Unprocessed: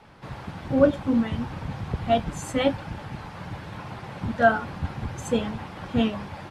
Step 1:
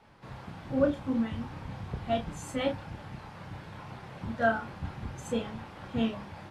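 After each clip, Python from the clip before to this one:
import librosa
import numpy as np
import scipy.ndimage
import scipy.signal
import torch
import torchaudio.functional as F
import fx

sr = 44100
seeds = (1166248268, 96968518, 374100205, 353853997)

y = fx.doubler(x, sr, ms=31.0, db=-5.5)
y = F.gain(torch.from_numpy(y), -8.0).numpy()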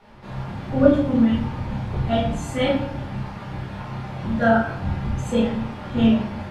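y = fx.high_shelf(x, sr, hz=6500.0, db=-4.5)
y = fx.room_shoebox(y, sr, seeds[0], volume_m3=93.0, walls='mixed', distance_m=1.3)
y = F.gain(torch.from_numpy(y), 4.5).numpy()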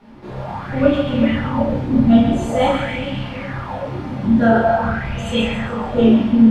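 y = fx.echo_split(x, sr, split_hz=600.0, low_ms=375, high_ms=137, feedback_pct=52, wet_db=-6.0)
y = fx.bell_lfo(y, sr, hz=0.47, low_hz=240.0, high_hz=3000.0, db=15)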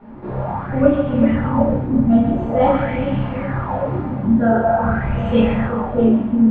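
y = scipy.signal.sosfilt(scipy.signal.butter(2, 1400.0, 'lowpass', fs=sr, output='sos'), x)
y = fx.rider(y, sr, range_db=4, speed_s=0.5)
y = F.gain(torch.from_numpy(y), 1.0).numpy()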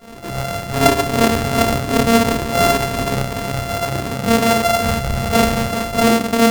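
y = np.r_[np.sort(x[:len(x) // 64 * 64].reshape(-1, 64), axis=1).ravel(), x[len(x) // 64 * 64:]]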